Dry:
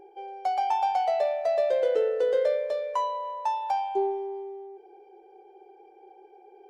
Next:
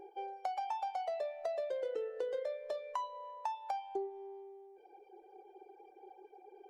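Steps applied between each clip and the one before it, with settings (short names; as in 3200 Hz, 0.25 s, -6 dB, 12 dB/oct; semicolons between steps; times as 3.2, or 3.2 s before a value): reverb removal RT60 1.1 s; compressor, threshold -34 dBFS, peak gain reduction 11.5 dB; gain -1.5 dB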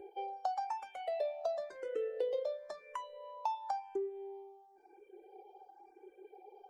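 endless phaser +0.96 Hz; gain +3 dB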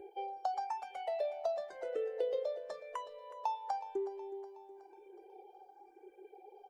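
feedback echo 0.369 s, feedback 54%, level -15 dB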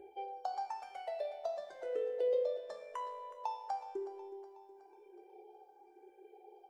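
resonator 71 Hz, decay 1.1 s, harmonics all, mix 80%; gain +8.5 dB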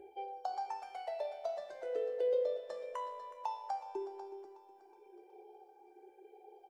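echo 0.495 s -12 dB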